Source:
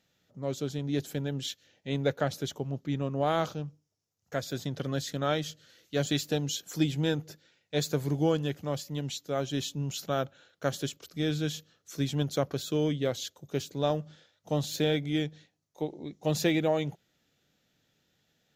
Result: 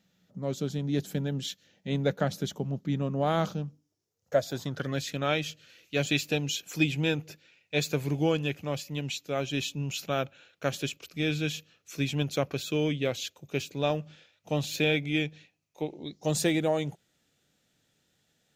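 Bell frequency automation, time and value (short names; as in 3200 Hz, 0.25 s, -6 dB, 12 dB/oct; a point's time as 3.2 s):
bell +14 dB 0.35 oct
3.58 s 190 Hz
4.39 s 610 Hz
5.02 s 2500 Hz
15.95 s 2500 Hz
16.39 s 8700 Hz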